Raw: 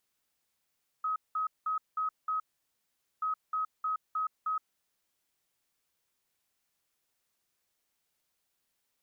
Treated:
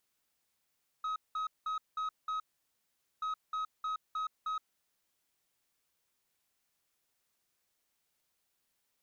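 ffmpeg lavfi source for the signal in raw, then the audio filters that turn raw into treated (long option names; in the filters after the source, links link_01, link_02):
-f lavfi -i "aevalsrc='0.0376*sin(2*PI*1270*t)*clip(min(mod(mod(t,2.18),0.31),0.12-mod(mod(t,2.18),0.31))/0.005,0,1)*lt(mod(t,2.18),1.55)':duration=4.36:sample_rate=44100"
-af "aeval=exprs='(tanh(44.7*val(0)+0.05)-tanh(0.05))/44.7':channel_layout=same"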